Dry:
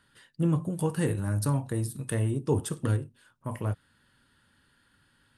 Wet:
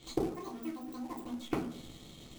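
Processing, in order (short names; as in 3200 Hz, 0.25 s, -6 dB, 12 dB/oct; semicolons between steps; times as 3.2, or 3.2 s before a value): Wiener smoothing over 9 samples; high shelf 7500 Hz +11.5 dB; flipped gate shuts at -29 dBFS, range -31 dB; reverb RT60 0.85 s, pre-delay 6 ms, DRR -4 dB; in parallel at -8 dB: companded quantiser 4-bit; on the sum: wide varispeed 2.26×; tone controls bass +10 dB, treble +4 dB; notch 610 Hz, Q 12; gain +3.5 dB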